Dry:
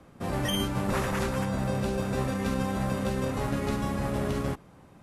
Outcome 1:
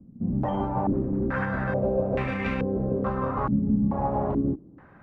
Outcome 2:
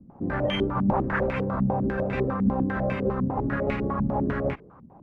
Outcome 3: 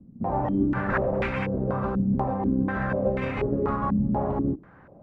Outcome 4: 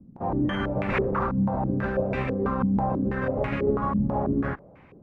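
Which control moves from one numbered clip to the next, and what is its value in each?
stepped low-pass, rate: 2.3, 10, 4.1, 6.1 Hz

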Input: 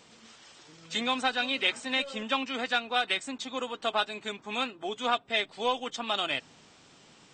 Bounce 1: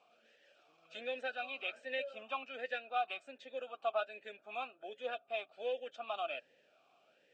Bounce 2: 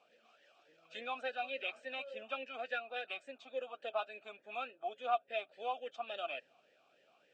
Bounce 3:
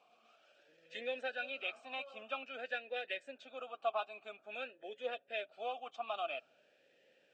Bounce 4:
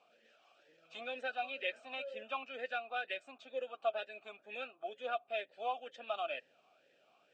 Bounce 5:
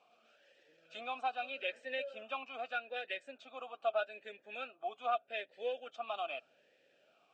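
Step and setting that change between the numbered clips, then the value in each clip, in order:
vowel sweep, rate: 1.3, 3.5, 0.5, 2.1, 0.81 Hz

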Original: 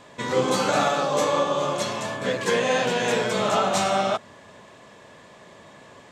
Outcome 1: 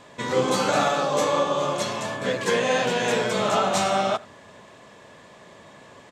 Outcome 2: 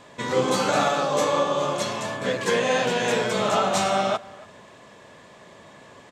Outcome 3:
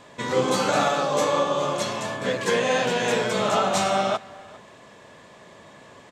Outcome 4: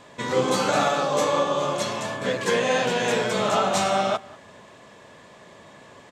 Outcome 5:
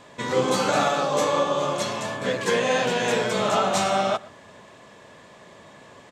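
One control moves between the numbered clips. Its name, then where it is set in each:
speakerphone echo, time: 80, 280, 400, 190, 120 ms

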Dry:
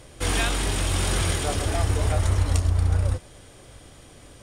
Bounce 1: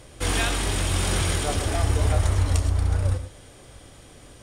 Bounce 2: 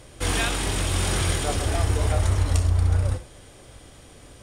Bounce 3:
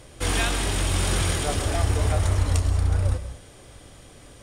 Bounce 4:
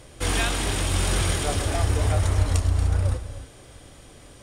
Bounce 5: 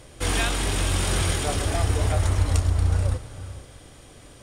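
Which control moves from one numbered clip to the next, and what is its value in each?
non-linear reverb, gate: 140, 80, 220, 320, 500 ms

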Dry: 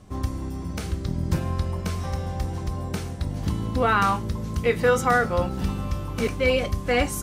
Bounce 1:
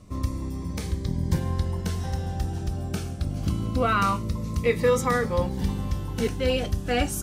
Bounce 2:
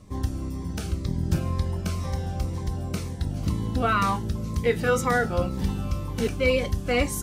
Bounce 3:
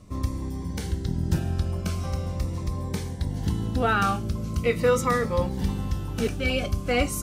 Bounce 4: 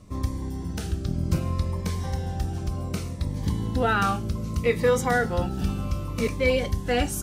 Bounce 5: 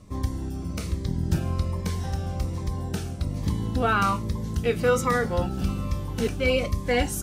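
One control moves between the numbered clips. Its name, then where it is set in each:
cascading phaser, rate: 0.23, 2, 0.41, 0.65, 1.2 Hz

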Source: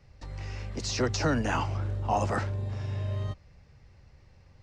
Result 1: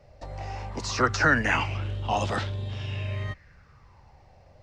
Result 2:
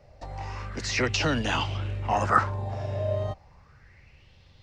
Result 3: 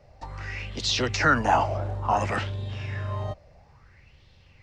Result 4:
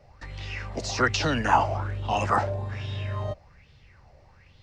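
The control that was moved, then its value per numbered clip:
LFO bell, rate: 0.21, 0.33, 0.58, 1.2 Hz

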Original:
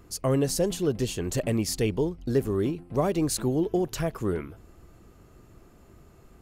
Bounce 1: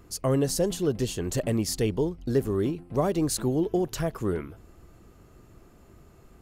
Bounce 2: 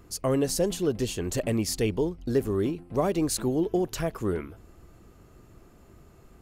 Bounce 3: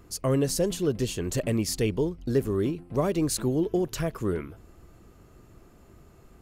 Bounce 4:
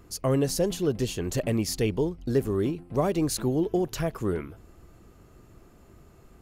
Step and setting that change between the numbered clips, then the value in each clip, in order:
dynamic EQ, frequency: 2400, 140, 780, 8200 Hz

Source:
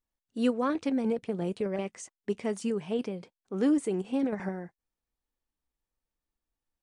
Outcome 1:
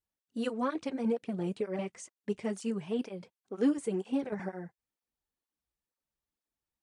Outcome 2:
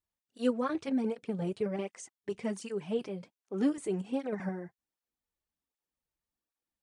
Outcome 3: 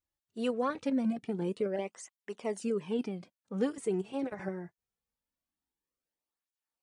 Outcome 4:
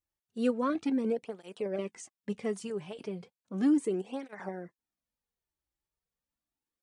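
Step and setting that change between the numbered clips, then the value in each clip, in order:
tape flanging out of phase, nulls at: 2.1, 1.3, 0.23, 0.35 Hz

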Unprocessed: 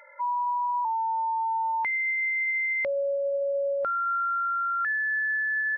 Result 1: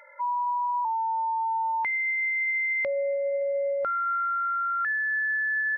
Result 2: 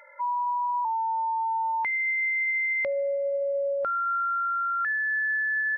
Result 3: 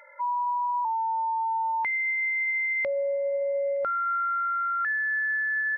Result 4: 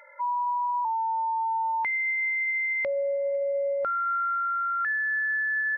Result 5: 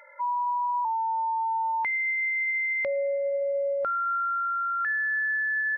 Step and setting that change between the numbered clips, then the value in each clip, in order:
thin delay, time: 285, 75, 917, 502, 111 ms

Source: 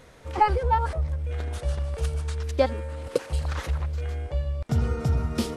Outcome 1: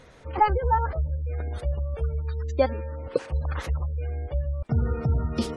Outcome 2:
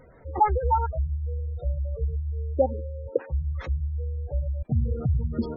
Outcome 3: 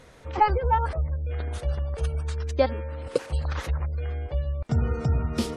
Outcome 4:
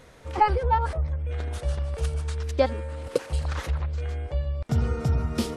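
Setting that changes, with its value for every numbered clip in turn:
spectral gate, under each frame's peak: -30, -15, -40, -55 dB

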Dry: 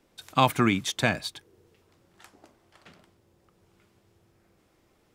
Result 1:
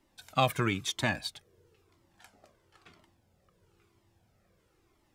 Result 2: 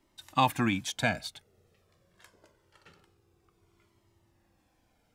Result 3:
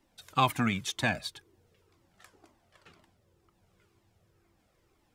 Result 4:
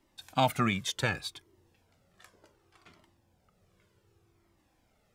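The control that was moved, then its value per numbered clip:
cascading flanger, rate: 1, 0.25, 2, 0.67 Hz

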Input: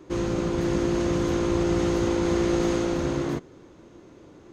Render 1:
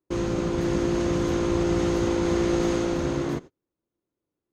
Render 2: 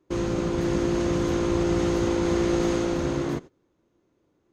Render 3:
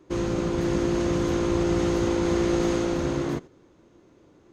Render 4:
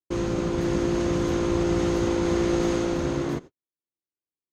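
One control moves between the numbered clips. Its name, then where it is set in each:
gate, range: -37, -20, -7, -57 dB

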